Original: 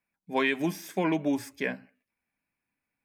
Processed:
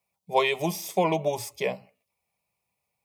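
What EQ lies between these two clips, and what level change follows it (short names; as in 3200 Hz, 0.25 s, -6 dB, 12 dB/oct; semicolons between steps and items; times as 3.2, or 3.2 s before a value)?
HPF 69 Hz; bell 1200 Hz +2 dB 0.24 oct; fixed phaser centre 660 Hz, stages 4; +8.5 dB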